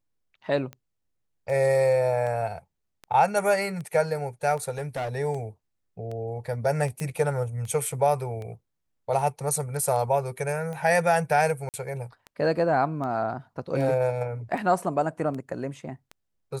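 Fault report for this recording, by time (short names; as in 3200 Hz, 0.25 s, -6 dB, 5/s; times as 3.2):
tick 78 rpm -25 dBFS
4.7–5.16 clipped -26.5 dBFS
7 pop -19 dBFS
11.69–11.74 gap 48 ms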